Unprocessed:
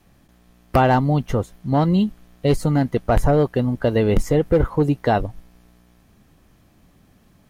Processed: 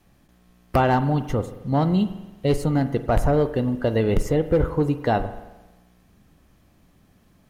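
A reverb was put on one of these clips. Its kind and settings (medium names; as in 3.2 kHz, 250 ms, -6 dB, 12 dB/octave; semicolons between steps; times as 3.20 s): spring tank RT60 1.1 s, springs 44 ms, chirp 75 ms, DRR 11 dB; trim -3 dB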